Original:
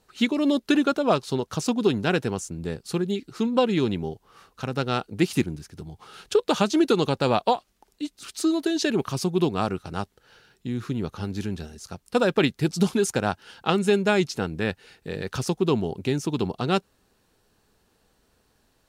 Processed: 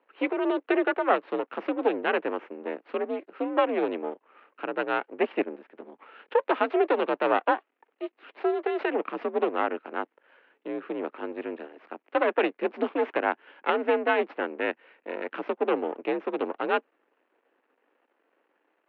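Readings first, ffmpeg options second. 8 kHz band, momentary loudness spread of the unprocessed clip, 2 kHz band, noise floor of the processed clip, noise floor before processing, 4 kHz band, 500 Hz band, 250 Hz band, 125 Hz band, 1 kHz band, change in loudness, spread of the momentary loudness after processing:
under -40 dB, 14 LU, +0.5 dB, -76 dBFS, -68 dBFS, -11.0 dB, -1.0 dB, -7.5 dB, under -25 dB, +0.5 dB, -3.0 dB, 13 LU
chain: -af "aeval=exprs='max(val(0),0)':c=same,highpass=f=240:t=q:w=0.5412,highpass=f=240:t=q:w=1.307,lowpass=f=2.6k:t=q:w=0.5176,lowpass=f=2.6k:t=q:w=0.7071,lowpass=f=2.6k:t=q:w=1.932,afreqshift=56,volume=2.5dB"

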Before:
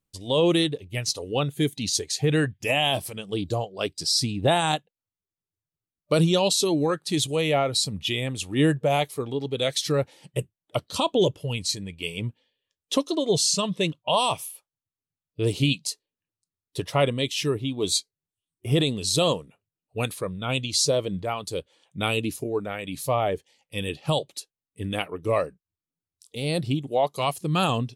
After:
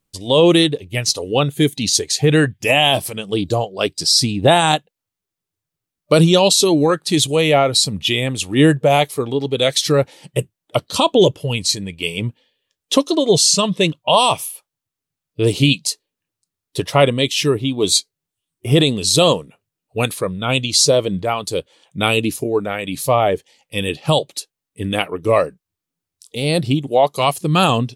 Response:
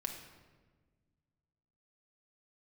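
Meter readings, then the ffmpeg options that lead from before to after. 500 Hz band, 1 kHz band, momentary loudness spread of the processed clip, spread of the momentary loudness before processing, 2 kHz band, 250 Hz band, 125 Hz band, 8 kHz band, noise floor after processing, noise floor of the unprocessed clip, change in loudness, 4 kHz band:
+9.0 dB, +9.0 dB, 11 LU, 11 LU, +9.0 dB, +8.5 dB, +7.5 dB, +9.0 dB, -85 dBFS, under -85 dBFS, +9.0 dB, +9.0 dB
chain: -af "equalizer=f=61:t=o:w=1.6:g=-5,volume=9dB"

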